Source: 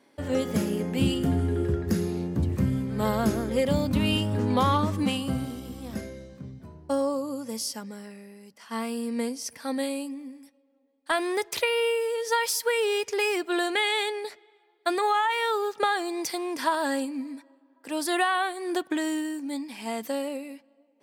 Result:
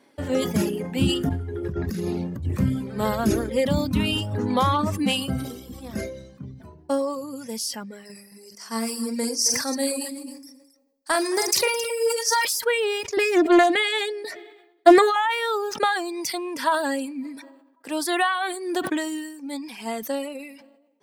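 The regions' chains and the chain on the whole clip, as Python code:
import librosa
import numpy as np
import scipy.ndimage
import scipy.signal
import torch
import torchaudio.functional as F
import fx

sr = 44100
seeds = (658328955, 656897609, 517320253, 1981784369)

y = fx.chain(x, sr, fx.over_compress(threshold_db=-29.0, ratio=-1.0),
    fx.peak_eq(hz=8700.0, db=-4.5, octaves=0.67), at=(1.29, 2.45))
y = fx.chain(y, sr, fx.high_shelf_res(hz=4200.0, db=7.0, q=3.0),
    fx.echo_multitap(ms=(44, 111, 215, 269), db=(-7.5, -13.0, -13.5, -11.0)), at=(8.05, 12.45))
y = fx.chain(y, sr, fx.notch(hz=840.0, q=9.7),
    fx.small_body(hz=(320.0, 680.0, 1800.0), ring_ms=50, db=14),
    fx.doppler_dist(depth_ms=0.15), at=(13.17, 15.16))
y = fx.dereverb_blind(y, sr, rt60_s=1.2)
y = fx.sustainer(y, sr, db_per_s=62.0)
y = y * 10.0 ** (3.0 / 20.0)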